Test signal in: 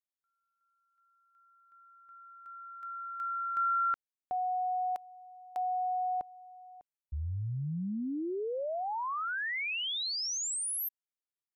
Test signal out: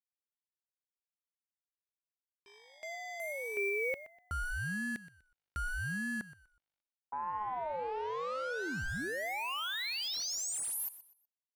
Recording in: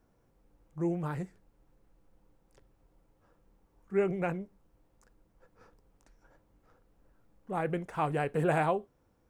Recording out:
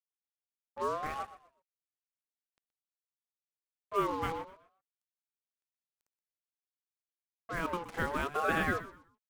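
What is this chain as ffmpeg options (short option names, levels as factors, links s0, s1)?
-filter_complex "[0:a]aeval=exprs='val(0)+0.000501*(sin(2*PI*50*n/s)+sin(2*PI*2*50*n/s)/2+sin(2*PI*3*50*n/s)/3+sin(2*PI*4*50*n/s)/4+sin(2*PI*5*50*n/s)/5)':c=same,acrusher=bits=6:mix=0:aa=0.5,asplit=2[s0][s1];[s1]aecho=0:1:123|246|369:0.178|0.0498|0.0139[s2];[s0][s2]amix=inputs=2:normalize=0,aeval=exprs='val(0)*sin(2*PI*810*n/s+810*0.2/0.82*sin(2*PI*0.82*n/s))':c=same"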